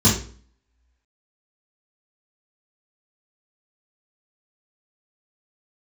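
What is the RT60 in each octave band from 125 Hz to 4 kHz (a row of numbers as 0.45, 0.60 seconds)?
0.55, 0.55, 0.45, 0.45, 0.40, 0.40 seconds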